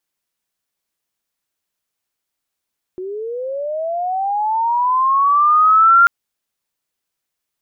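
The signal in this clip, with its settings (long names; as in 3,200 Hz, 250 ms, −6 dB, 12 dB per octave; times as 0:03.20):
glide linear 360 Hz → 1,400 Hz −24 dBFS → −6 dBFS 3.09 s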